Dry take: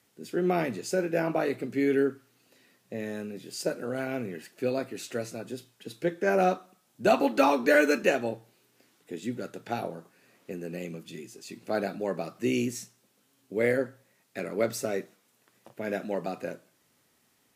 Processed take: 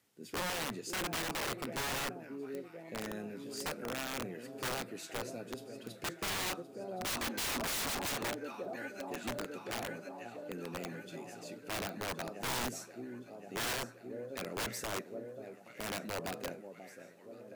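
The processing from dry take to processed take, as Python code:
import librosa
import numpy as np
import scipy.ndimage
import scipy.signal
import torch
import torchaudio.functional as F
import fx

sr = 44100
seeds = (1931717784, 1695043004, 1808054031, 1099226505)

y = fx.echo_alternate(x, sr, ms=535, hz=1000.0, feedback_pct=81, wet_db=-12)
y = (np.mod(10.0 ** (24.5 / 20.0) * y + 1.0, 2.0) - 1.0) / 10.0 ** (24.5 / 20.0)
y = F.gain(torch.from_numpy(y), -6.5).numpy()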